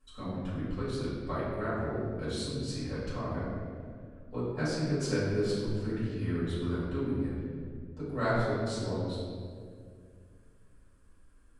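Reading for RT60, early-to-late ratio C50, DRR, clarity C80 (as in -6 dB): 2.2 s, -1.5 dB, -12.0 dB, 0.5 dB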